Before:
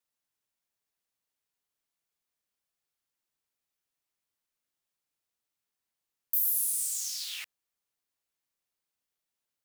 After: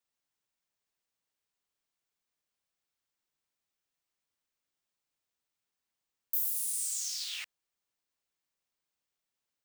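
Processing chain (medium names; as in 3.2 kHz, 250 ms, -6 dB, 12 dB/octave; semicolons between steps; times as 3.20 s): peaking EQ 12 kHz -14.5 dB 0.27 oct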